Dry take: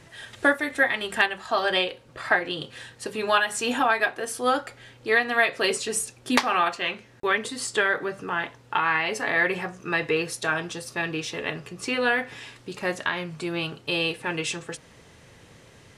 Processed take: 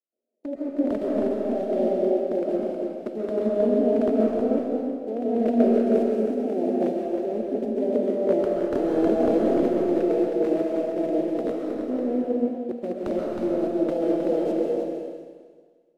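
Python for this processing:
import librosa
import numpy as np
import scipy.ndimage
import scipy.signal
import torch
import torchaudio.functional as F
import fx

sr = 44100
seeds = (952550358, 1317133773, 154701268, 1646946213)

y = fx.envelope_flatten(x, sr, power=0.1)
y = fx.leveller(y, sr, passes=3)
y = fx.over_compress(y, sr, threshold_db=-16.0, ratio=-1.0)
y = scipy.signal.sosfilt(scipy.signal.ellip(3, 1.0, 40, [230.0, 610.0], 'bandpass', fs=sr, output='sos'), y)
y = fx.level_steps(y, sr, step_db=17)
y = 10.0 ** (-27.0 / 20.0) * (np.abs((y / 10.0 ** (-27.0 / 20.0) + 3.0) % 4.0 - 2.0) - 1.0)
y = y + 10.0 ** (-5.0 / 20.0) * np.pad(y, (int(316 * sr / 1000.0), 0))[:len(y)]
y = fx.rev_freeverb(y, sr, rt60_s=2.8, hf_ratio=1.0, predelay_ms=95, drr_db=-3.0)
y = fx.band_widen(y, sr, depth_pct=70)
y = y * 10.0 ** (8.0 / 20.0)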